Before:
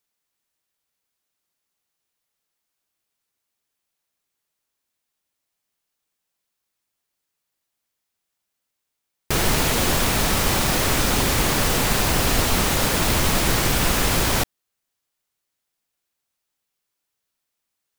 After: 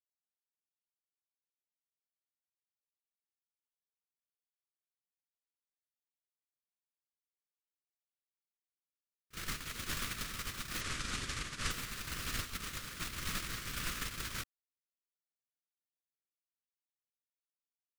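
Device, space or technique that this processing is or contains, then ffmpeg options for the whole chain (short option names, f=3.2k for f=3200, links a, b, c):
stacked limiters: -filter_complex "[0:a]asettb=1/sr,asplit=3[a][b][c];[a]atrim=end=10.814[d];[b]atrim=start=10.81:end=11.71,asetpts=PTS-STARTPTS,afade=t=in:d=0.004:c=qsin,afade=t=out:st=0.896:d=0.004:c=qsin,lowpass=f=9.4k:w=0.5412,lowpass=f=9.4k:w=1.3066[e];[c]atrim=start=11.706[f];[d][e]acrossfade=d=0.004:c1=hsin:c2=qsin[g];[g][f]acrossfade=d=0.004:c1=qsin:c2=hsin,highshelf=f=7.3k:g=-4.5,alimiter=limit=-12.5dB:level=0:latency=1:release=30,alimiter=limit=-16dB:level=0:latency=1:release=17,agate=range=-55dB:threshold=-20dB:ratio=16:detection=peak,firequalizer=gain_entry='entry(120,0);entry(820,-13);entry(1200,5)':delay=0.05:min_phase=1,volume=8.5dB"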